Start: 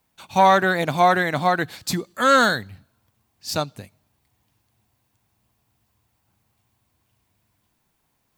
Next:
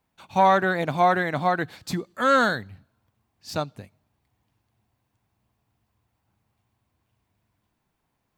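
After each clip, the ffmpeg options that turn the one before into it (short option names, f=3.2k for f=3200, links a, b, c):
-af "highshelf=f=3.7k:g=-9.5,volume=-2.5dB"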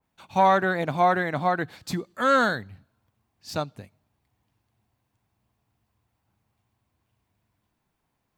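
-af "adynamicequalizer=threshold=0.0178:dfrequency=2300:dqfactor=0.7:tfrequency=2300:tqfactor=0.7:attack=5:release=100:ratio=0.375:range=1.5:mode=cutabove:tftype=highshelf,volume=-1dB"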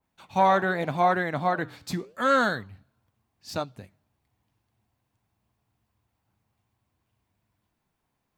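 -af "flanger=delay=3.2:depth=9:regen=-86:speed=0.83:shape=sinusoidal,volume=3dB"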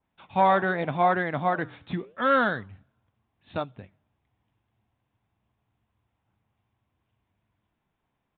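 -af "aresample=8000,aresample=44100"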